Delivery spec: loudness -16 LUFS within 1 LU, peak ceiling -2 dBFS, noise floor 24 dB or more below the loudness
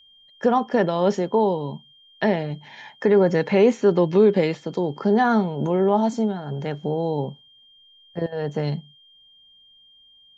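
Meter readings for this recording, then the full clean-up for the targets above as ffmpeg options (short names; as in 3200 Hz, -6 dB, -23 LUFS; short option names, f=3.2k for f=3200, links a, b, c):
steady tone 3200 Hz; tone level -51 dBFS; loudness -21.5 LUFS; peak -6.0 dBFS; loudness target -16.0 LUFS
-> -af "bandreject=f=3.2k:w=30"
-af "volume=5.5dB,alimiter=limit=-2dB:level=0:latency=1"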